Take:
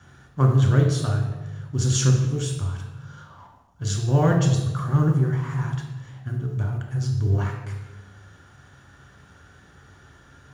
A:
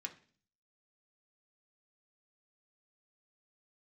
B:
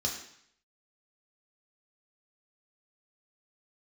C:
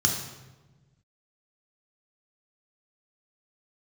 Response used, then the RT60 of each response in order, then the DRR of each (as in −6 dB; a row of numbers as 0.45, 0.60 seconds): C; 0.45, 0.65, 1.2 seconds; 2.0, −1.0, 1.0 decibels